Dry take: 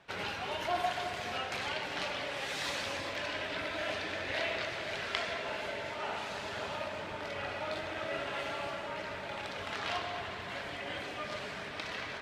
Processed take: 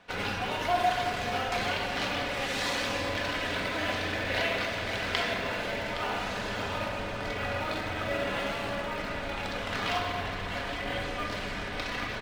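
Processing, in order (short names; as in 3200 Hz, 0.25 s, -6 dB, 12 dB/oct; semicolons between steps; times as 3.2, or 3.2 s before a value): in parallel at -11 dB: Schmitt trigger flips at -34 dBFS; on the sum: echo 0.816 s -11.5 dB; reverb RT60 0.70 s, pre-delay 4 ms, DRR 3.5 dB; gain +3 dB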